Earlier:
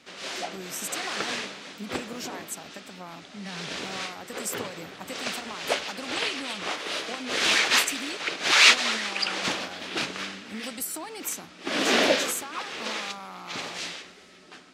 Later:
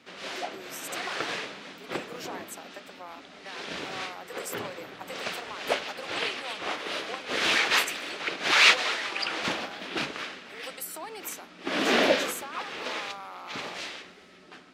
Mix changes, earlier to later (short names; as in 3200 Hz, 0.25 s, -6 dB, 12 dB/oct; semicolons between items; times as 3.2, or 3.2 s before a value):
speech: add steep high-pass 380 Hz; master: add bell 7600 Hz -7.5 dB 1.7 oct